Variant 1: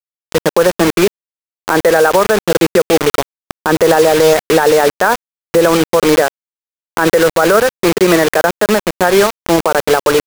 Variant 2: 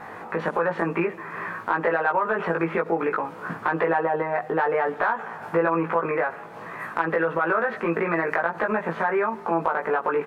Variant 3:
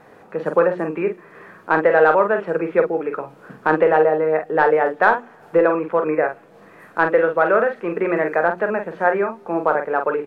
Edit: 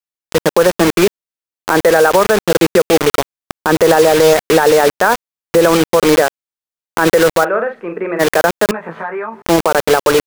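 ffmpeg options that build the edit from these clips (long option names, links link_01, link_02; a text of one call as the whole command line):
ffmpeg -i take0.wav -i take1.wav -i take2.wav -filter_complex "[0:a]asplit=3[link_01][link_02][link_03];[link_01]atrim=end=7.45[link_04];[2:a]atrim=start=7.43:end=8.21[link_05];[link_02]atrim=start=8.19:end=8.712[link_06];[1:a]atrim=start=8.708:end=9.422[link_07];[link_03]atrim=start=9.418[link_08];[link_04][link_05]acrossfade=duration=0.02:curve1=tri:curve2=tri[link_09];[link_09][link_06]acrossfade=duration=0.02:curve1=tri:curve2=tri[link_10];[link_10][link_07]acrossfade=duration=0.004:curve1=hsin:curve2=hsin[link_11];[link_11][link_08]acrossfade=duration=0.004:curve1=hsin:curve2=hsin" out.wav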